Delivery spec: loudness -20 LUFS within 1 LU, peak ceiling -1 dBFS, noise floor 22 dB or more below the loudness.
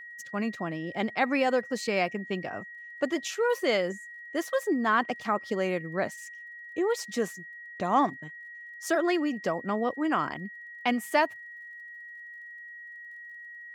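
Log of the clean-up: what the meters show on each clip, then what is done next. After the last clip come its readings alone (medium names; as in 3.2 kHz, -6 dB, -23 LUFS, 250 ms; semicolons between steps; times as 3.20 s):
tick rate 22 per s; steady tone 1.9 kHz; tone level -42 dBFS; loudness -29.0 LUFS; peak level -12.0 dBFS; loudness target -20.0 LUFS
-> de-click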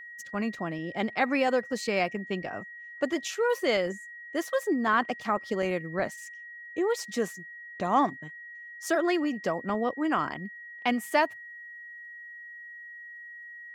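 tick rate 0.073 per s; steady tone 1.9 kHz; tone level -42 dBFS
-> band-stop 1.9 kHz, Q 30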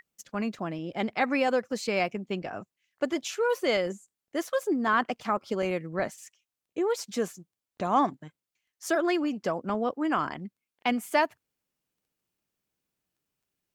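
steady tone not found; loudness -29.5 LUFS; peak level -12.0 dBFS; loudness target -20.0 LUFS
-> trim +9.5 dB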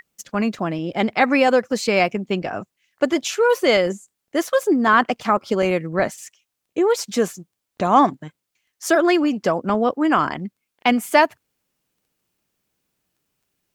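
loudness -20.0 LUFS; peak level -2.5 dBFS; noise floor -80 dBFS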